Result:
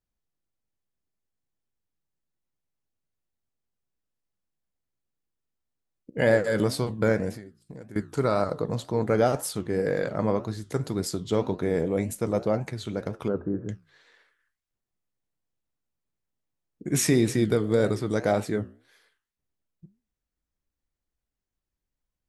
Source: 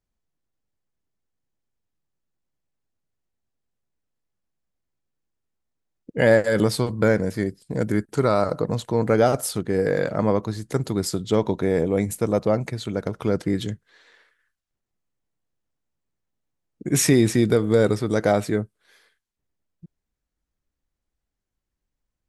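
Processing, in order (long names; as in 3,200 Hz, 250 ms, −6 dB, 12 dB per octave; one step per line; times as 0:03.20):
0:07.33–0:07.96: downward compressor 12 to 1, threshold −35 dBFS, peak gain reduction 18 dB
0:13.28–0:13.69: Chebyshev low-pass with heavy ripple 1,600 Hz, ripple 3 dB
flanger 1.9 Hz, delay 9.7 ms, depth 8.6 ms, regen −77%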